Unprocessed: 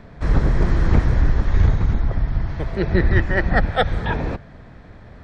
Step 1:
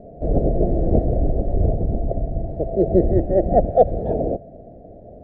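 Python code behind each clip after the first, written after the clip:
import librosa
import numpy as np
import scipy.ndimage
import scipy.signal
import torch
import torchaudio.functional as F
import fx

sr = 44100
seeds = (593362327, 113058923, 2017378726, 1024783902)

y = fx.curve_eq(x, sr, hz=(120.0, 690.0, 1000.0), db=(0, 15, -26))
y = y * 10.0 ** (-4.0 / 20.0)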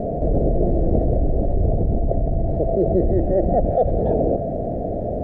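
y = fx.env_flatten(x, sr, amount_pct=70)
y = y * 10.0 ** (-6.0 / 20.0)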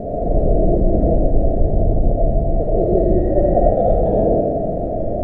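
y = fx.rev_freeverb(x, sr, rt60_s=0.94, hf_ratio=0.55, predelay_ms=35, drr_db=-3.5)
y = y * 10.0 ** (-2.0 / 20.0)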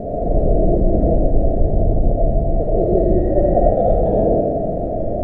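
y = x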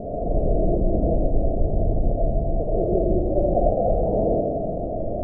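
y = fx.brickwall_lowpass(x, sr, high_hz=1300.0)
y = y * 10.0 ** (-5.5 / 20.0)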